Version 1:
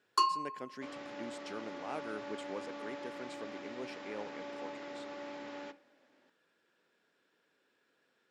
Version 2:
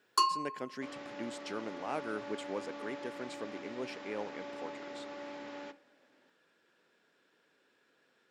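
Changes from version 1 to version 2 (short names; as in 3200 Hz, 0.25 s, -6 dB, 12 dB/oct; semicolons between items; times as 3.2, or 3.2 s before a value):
speech +4.0 dB; first sound: add high shelf 6400 Hz +9.5 dB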